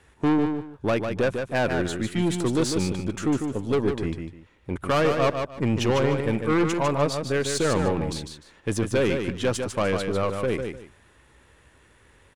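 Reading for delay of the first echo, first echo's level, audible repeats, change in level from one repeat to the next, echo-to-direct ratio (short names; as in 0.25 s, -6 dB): 0.15 s, -6.0 dB, 2, -13.0 dB, -6.0 dB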